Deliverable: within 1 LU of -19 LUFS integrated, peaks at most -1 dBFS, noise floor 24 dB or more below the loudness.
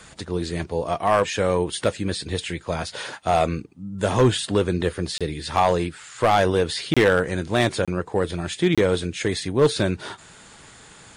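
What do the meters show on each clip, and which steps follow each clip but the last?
clipped 0.4%; flat tops at -10.5 dBFS; dropouts 4; longest dropout 26 ms; loudness -23.0 LUFS; peak -10.5 dBFS; loudness target -19.0 LUFS
-> clip repair -10.5 dBFS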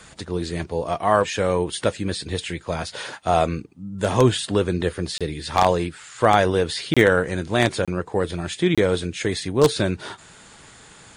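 clipped 0.0%; dropouts 4; longest dropout 26 ms
-> interpolate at 5.18/6.94/7.85/8.75, 26 ms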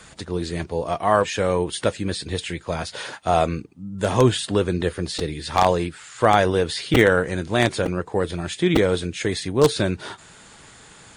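dropouts 0; loudness -22.0 LUFS; peak -1.5 dBFS; loudness target -19.0 LUFS
-> gain +3 dB; limiter -1 dBFS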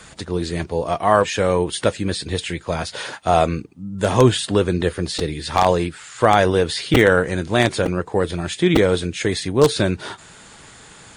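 loudness -19.5 LUFS; peak -1.0 dBFS; noise floor -44 dBFS

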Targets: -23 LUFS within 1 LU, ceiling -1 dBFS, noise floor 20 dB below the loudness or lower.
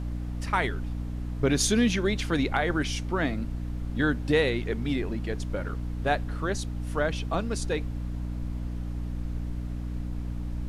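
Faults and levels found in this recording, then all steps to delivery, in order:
hum 60 Hz; harmonics up to 300 Hz; hum level -30 dBFS; noise floor -34 dBFS; noise floor target -49 dBFS; loudness -29.0 LUFS; peak -12.0 dBFS; loudness target -23.0 LUFS
-> de-hum 60 Hz, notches 5; noise print and reduce 15 dB; gain +6 dB

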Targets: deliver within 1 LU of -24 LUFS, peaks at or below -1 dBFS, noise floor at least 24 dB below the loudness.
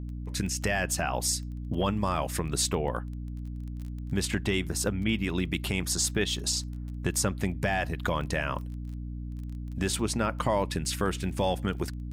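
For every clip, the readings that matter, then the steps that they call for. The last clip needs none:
ticks 19/s; hum 60 Hz; harmonics up to 300 Hz; hum level -34 dBFS; loudness -30.0 LUFS; peak -15.0 dBFS; loudness target -24.0 LUFS
-> de-click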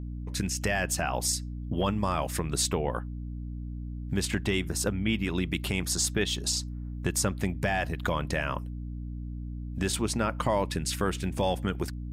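ticks 0/s; hum 60 Hz; harmonics up to 300 Hz; hum level -34 dBFS
-> de-hum 60 Hz, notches 5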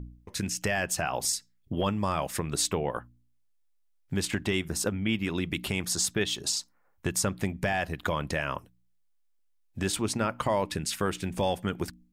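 hum none; loudness -30.0 LUFS; peak -16.0 dBFS; loudness target -24.0 LUFS
-> gain +6 dB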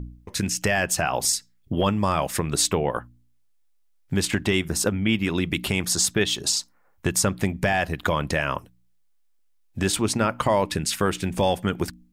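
loudness -24.0 LUFS; peak -10.0 dBFS; noise floor -61 dBFS

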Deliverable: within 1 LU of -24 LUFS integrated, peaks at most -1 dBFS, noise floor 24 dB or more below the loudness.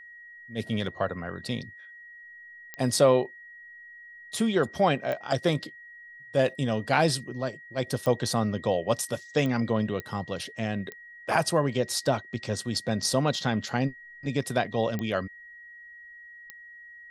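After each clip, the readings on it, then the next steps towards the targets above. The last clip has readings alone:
clicks 8; steady tone 1900 Hz; tone level -45 dBFS; loudness -28.0 LUFS; peak -7.5 dBFS; loudness target -24.0 LUFS
-> de-click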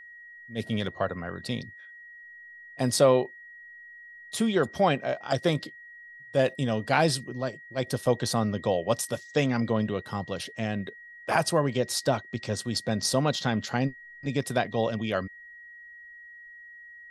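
clicks 0; steady tone 1900 Hz; tone level -45 dBFS
-> notch 1900 Hz, Q 30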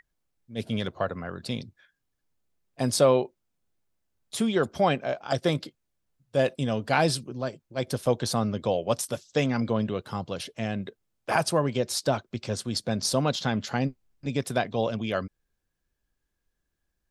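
steady tone none; loudness -28.0 LUFS; peak -7.5 dBFS; loudness target -24.0 LUFS
-> gain +4 dB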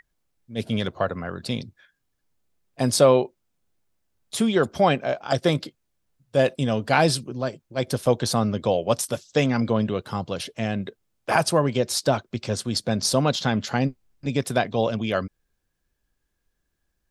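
loudness -24.0 LUFS; peak -3.5 dBFS; noise floor -76 dBFS

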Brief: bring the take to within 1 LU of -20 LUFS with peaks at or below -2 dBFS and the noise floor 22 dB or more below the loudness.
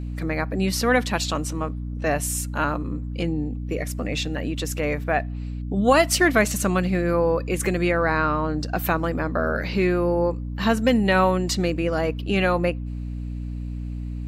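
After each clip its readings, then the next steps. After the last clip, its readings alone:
hum 60 Hz; harmonics up to 300 Hz; hum level -28 dBFS; loudness -23.5 LUFS; peak -6.0 dBFS; loudness target -20.0 LUFS
-> de-hum 60 Hz, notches 5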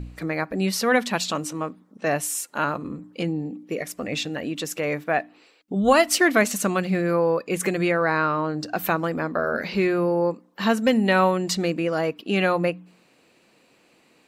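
hum none; loudness -23.5 LUFS; peak -6.0 dBFS; loudness target -20.0 LUFS
-> gain +3.5 dB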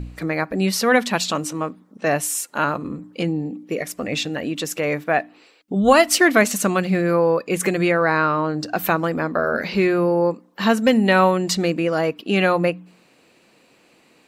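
loudness -20.0 LUFS; peak -2.5 dBFS; noise floor -56 dBFS

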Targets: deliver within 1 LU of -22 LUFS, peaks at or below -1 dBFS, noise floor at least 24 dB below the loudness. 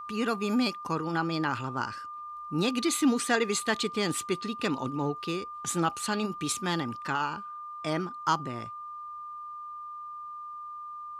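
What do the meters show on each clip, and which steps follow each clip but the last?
steady tone 1200 Hz; tone level -38 dBFS; loudness -31.0 LUFS; peak -12.0 dBFS; loudness target -22.0 LUFS
-> notch 1200 Hz, Q 30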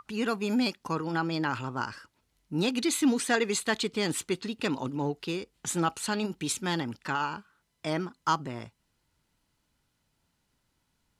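steady tone none; loudness -30.5 LUFS; peak -12.5 dBFS; loudness target -22.0 LUFS
-> gain +8.5 dB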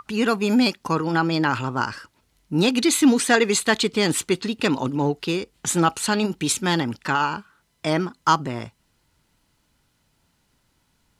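loudness -22.0 LUFS; peak -4.0 dBFS; noise floor -68 dBFS

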